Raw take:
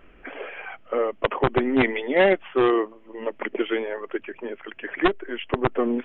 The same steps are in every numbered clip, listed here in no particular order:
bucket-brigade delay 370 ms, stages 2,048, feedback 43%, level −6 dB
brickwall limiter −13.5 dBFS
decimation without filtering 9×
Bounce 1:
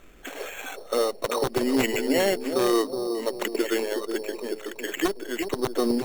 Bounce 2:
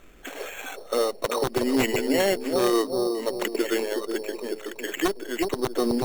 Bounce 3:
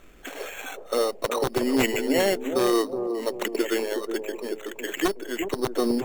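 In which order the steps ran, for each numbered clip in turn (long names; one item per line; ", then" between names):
brickwall limiter, then bucket-brigade delay, then decimation without filtering
bucket-brigade delay, then decimation without filtering, then brickwall limiter
decimation without filtering, then brickwall limiter, then bucket-brigade delay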